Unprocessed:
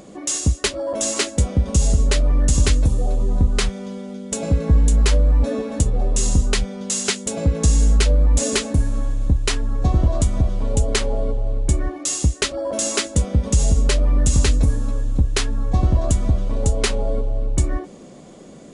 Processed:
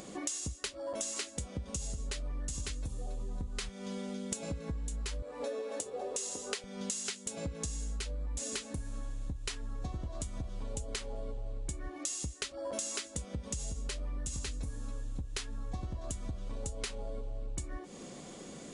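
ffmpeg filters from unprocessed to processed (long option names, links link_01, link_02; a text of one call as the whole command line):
ffmpeg -i in.wav -filter_complex "[0:a]asettb=1/sr,asplit=3[link_01][link_02][link_03];[link_01]atrim=end=5.224[link_04];[link_02]atrim=start=5.22:end=6.64,asetpts=PTS-STARTPTS,afade=type=in:duration=0.004:curve=qsin,afade=type=out:start_time=1.416:duration=0.004:curve=qsin,highpass=frequency=450:width_type=q:width=2.2[link_05];[link_03]atrim=start=6.636[link_06];[link_04][link_05]acrossfade=duration=0.004:curve1=hsin:curve2=qsin[link_07];[link_07][link_06]acrossfade=duration=0.004:curve1=qsin:curve2=hsin,tiltshelf=frequency=1200:gain=-4,bandreject=frequency=620:width=15,acompressor=threshold=-32dB:ratio=16,volume=-2.5dB" out.wav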